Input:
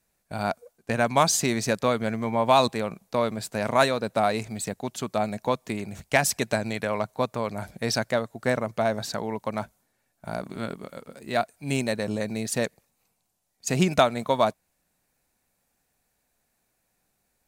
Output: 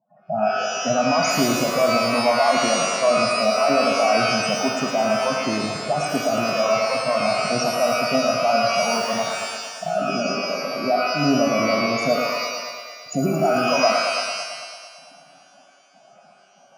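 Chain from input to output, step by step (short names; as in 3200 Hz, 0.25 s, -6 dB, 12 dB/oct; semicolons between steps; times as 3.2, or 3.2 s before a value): per-bin compression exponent 0.6; gate with hold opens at -38 dBFS; bell 1000 Hz +4.5 dB 1.5 oct; limiter -8 dBFS, peak gain reduction 8.5 dB; loudest bins only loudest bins 8; speaker cabinet 110–6900 Hz, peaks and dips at 270 Hz +9 dB, 430 Hz -4 dB, 620 Hz +6 dB, 910 Hz -6 dB, 1500 Hz -9 dB, 4900 Hz +4 dB; on a send: thinning echo 0.116 s, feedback 76%, high-pass 240 Hz, level -7 dB; on the sum: speed mistake 24 fps film run at 25 fps; shimmer reverb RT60 1.1 s, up +12 st, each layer -2 dB, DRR 3.5 dB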